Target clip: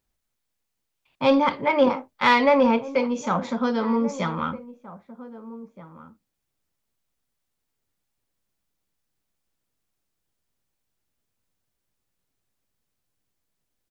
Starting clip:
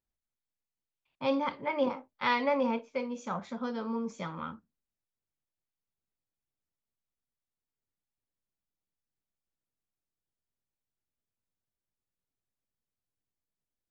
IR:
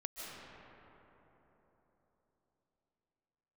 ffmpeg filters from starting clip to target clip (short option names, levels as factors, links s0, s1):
-filter_complex "[0:a]asplit=2[s0][s1];[s1]asoftclip=type=tanh:threshold=0.0501,volume=0.631[s2];[s0][s2]amix=inputs=2:normalize=0,asplit=2[s3][s4];[s4]adelay=1574,volume=0.158,highshelf=f=4000:g=-35.4[s5];[s3][s5]amix=inputs=2:normalize=0,volume=2.37"